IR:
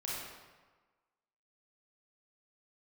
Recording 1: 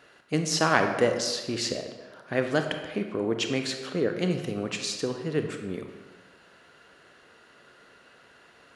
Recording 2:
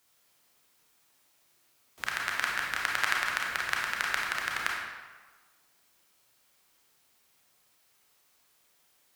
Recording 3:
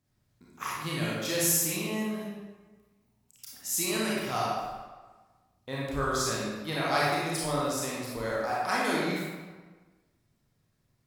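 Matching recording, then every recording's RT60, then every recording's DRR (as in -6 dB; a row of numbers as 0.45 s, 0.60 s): 3; 1.3 s, 1.3 s, 1.3 s; 5.0 dB, -2.0 dB, -6.5 dB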